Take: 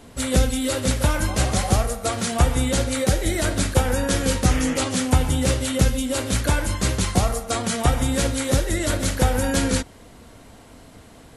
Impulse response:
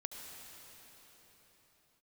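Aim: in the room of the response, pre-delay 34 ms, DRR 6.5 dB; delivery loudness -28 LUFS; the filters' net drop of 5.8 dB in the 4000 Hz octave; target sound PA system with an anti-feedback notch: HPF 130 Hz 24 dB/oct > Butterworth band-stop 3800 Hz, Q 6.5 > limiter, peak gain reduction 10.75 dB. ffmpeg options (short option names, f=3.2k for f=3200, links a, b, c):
-filter_complex "[0:a]equalizer=f=4k:t=o:g=-6,asplit=2[a][b];[1:a]atrim=start_sample=2205,adelay=34[c];[b][c]afir=irnorm=-1:irlink=0,volume=-5dB[d];[a][d]amix=inputs=2:normalize=0,highpass=f=130:w=0.5412,highpass=f=130:w=1.3066,asuperstop=centerf=3800:order=8:qfactor=6.5,volume=-1.5dB,alimiter=limit=-18.5dB:level=0:latency=1"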